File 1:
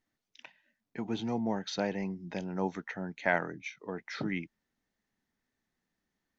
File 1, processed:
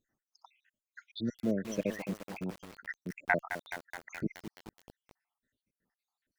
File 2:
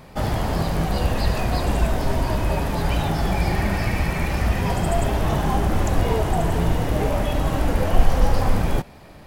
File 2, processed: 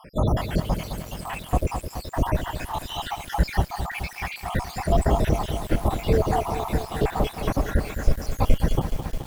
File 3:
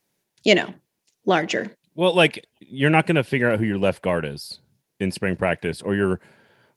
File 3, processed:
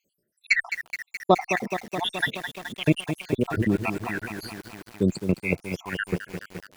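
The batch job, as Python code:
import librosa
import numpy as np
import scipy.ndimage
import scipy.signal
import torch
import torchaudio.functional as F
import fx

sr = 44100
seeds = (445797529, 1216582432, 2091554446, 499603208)

y = fx.spec_dropout(x, sr, seeds[0], share_pct=79)
y = fx.cheby_harmonics(y, sr, harmonics=(6, 8), levels_db=(-41, -37), full_scale_db=-5.5)
y = fx.echo_crushed(y, sr, ms=212, feedback_pct=80, bits=7, wet_db=-9)
y = F.gain(torch.from_numpy(y), 2.5).numpy()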